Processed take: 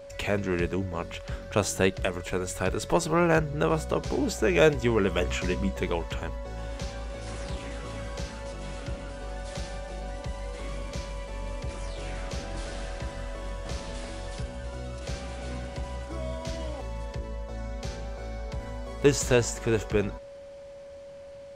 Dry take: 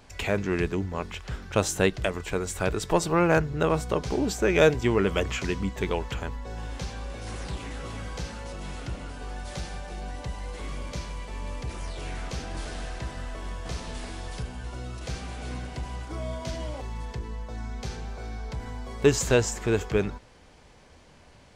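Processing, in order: whine 560 Hz -41 dBFS; 5.2–5.79 doubler 16 ms -7 dB; gain -1 dB

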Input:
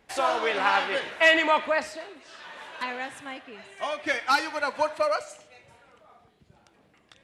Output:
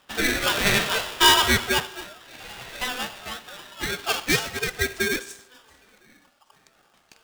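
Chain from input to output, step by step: low-pass sweep 2600 Hz -> 7400 Hz, 3.87–4.37; one-sided clip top -12.5 dBFS; polarity switched at an audio rate 1000 Hz

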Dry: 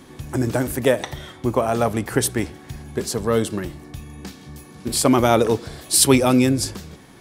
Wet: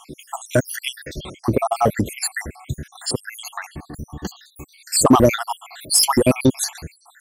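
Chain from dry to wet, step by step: random spectral dropouts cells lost 75%; in parallel at -4.5 dB: hard clip -20.5 dBFS, distortion -7 dB; on the sum: gain +4 dB

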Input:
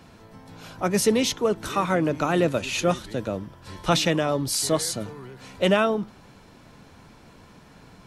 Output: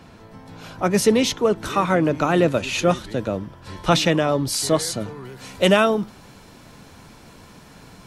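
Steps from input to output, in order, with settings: high shelf 5300 Hz -4.5 dB, from 5.25 s +7.5 dB; gain +4 dB

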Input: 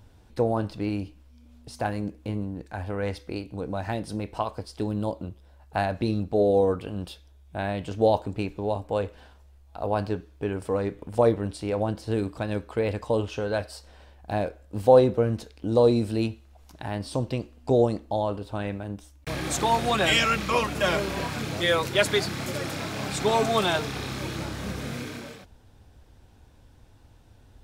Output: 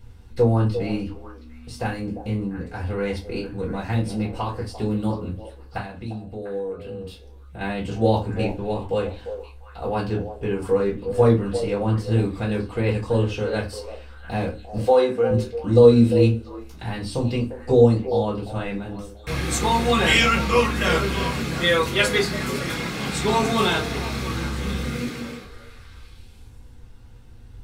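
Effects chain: bell 640 Hz -10.5 dB 0.57 oct; 5.77–7.61 compressor 3:1, threshold -41 dBFS, peak gain reduction 15 dB; 14.78–15.31 weighting filter A; delay with a stepping band-pass 0.348 s, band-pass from 540 Hz, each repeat 1.4 oct, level -8 dB; reverb RT60 0.25 s, pre-delay 3 ms, DRR -3.5 dB; gain -5.5 dB

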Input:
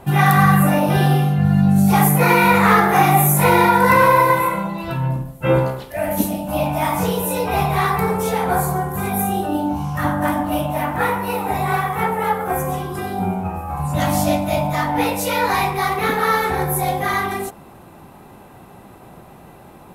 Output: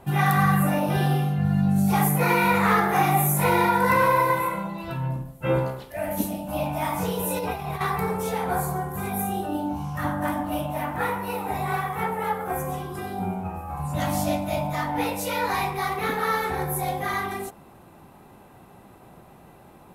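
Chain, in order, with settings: 7.19–7.81 negative-ratio compressor -21 dBFS, ratio -0.5; gain -7 dB

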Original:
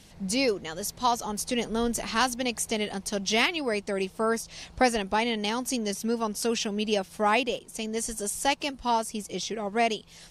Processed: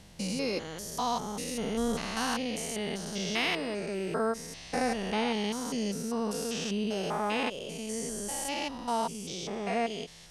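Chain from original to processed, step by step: stepped spectrum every 0.2 s; ending taper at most 320 dB/s

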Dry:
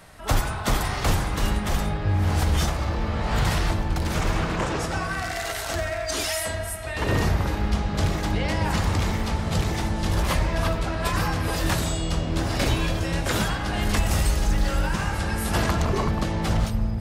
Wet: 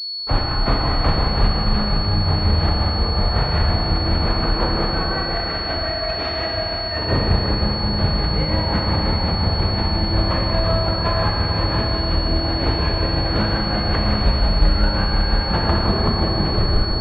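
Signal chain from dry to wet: tape stop at the end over 0.64 s; gate with hold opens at -26 dBFS; tremolo 5.6 Hz, depth 67%; on a send: echo with dull and thin repeats by turns 0.499 s, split 1100 Hz, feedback 56%, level -7.5 dB; on the sum: Schroeder reverb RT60 2.7 s, combs from 26 ms, DRR -0.5 dB; pulse-width modulation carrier 4400 Hz; gain +4 dB

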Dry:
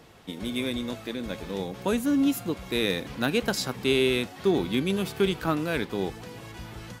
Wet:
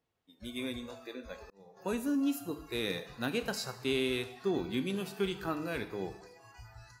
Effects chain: spectral noise reduction 23 dB; two-slope reverb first 0.73 s, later 1.9 s, DRR 8.5 dB; 1.37–1.77 auto swell 0.702 s; gain -8.5 dB

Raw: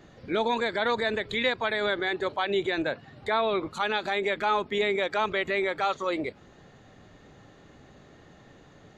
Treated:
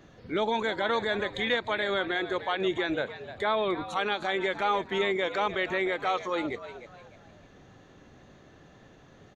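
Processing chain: wow and flutter 16 cents; speed mistake 25 fps video run at 24 fps; on a send: frequency-shifting echo 0.303 s, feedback 34%, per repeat +100 Hz, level -13 dB; on the sum: gain -1.5 dB

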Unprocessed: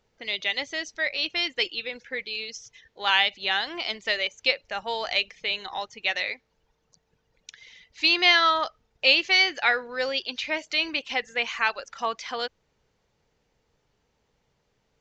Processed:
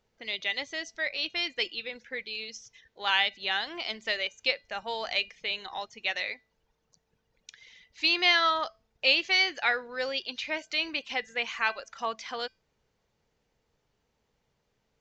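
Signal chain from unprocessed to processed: resonator 220 Hz, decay 0.31 s, harmonics odd, mix 40%

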